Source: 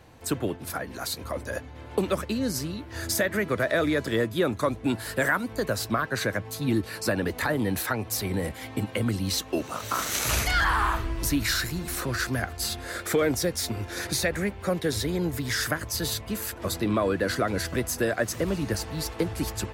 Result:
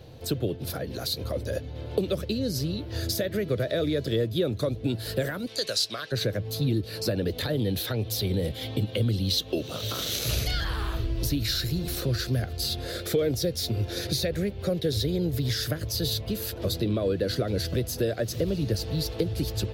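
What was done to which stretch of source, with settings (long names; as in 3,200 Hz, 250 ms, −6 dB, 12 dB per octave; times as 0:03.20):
0:05.47–0:06.12: meter weighting curve ITU-R 468
0:07.32–0:10.14: parametric band 3,400 Hz +6.5 dB 0.42 octaves
whole clip: dynamic equaliser 930 Hz, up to −5 dB, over −41 dBFS, Q 1; downward compressor 2 to 1, threshold −32 dBFS; octave-band graphic EQ 125/250/500/1,000/2,000/4,000/8,000 Hz +6/−4/+6/−10/−8/+7/−10 dB; level +4.5 dB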